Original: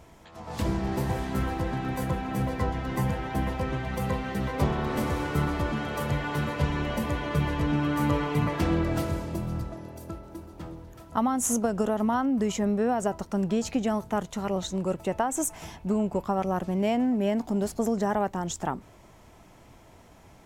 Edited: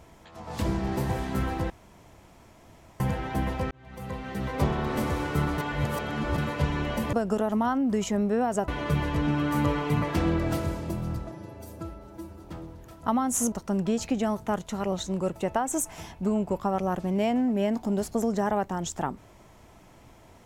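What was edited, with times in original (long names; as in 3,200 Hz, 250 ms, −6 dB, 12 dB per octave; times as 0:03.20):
0:01.70–0:03.00: fill with room tone
0:03.71–0:04.61: fade in
0:05.58–0:06.38: reverse
0:09.77–0:10.49: time-stretch 1.5×
0:11.61–0:13.16: move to 0:07.13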